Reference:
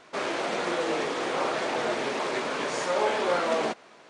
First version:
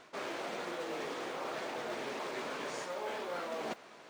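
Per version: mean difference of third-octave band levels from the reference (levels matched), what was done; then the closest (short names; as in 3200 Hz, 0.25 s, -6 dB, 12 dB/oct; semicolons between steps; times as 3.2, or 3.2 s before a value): 3.5 dB: reverse; compressor 6:1, threshold -35 dBFS, peak gain reduction 13.5 dB; reverse; modulation noise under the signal 28 dB; gain -2 dB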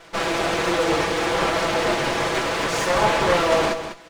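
5.0 dB: minimum comb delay 6 ms; on a send: echo 0.201 s -10 dB; on the sum: gain +8 dB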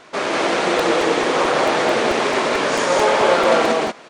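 2.5 dB: on a send: loudspeakers at several distances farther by 41 m -9 dB, 63 m -1 dB; on the sum: crackling interface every 0.22 s, samples 128, repeat, from 0.79; gain +8 dB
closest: third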